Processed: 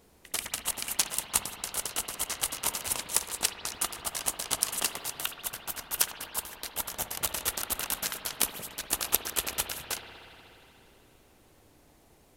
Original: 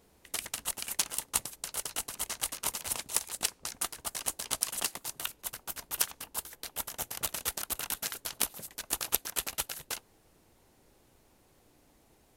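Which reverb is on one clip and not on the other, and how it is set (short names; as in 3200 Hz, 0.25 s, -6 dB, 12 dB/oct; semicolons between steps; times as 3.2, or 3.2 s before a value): spring tank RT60 3.1 s, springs 60 ms, chirp 20 ms, DRR 6 dB; gain +3 dB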